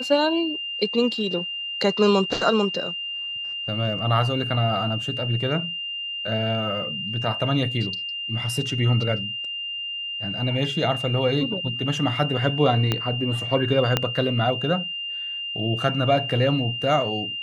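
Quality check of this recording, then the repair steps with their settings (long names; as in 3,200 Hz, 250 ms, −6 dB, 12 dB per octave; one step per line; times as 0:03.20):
whistle 2,800 Hz −28 dBFS
0:12.92: click −8 dBFS
0:13.97: click −5 dBFS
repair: click removal
notch filter 2,800 Hz, Q 30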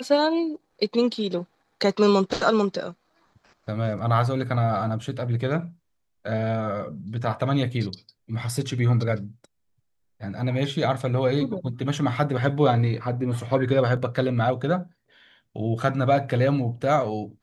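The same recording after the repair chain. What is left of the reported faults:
0:12.92: click
0:13.97: click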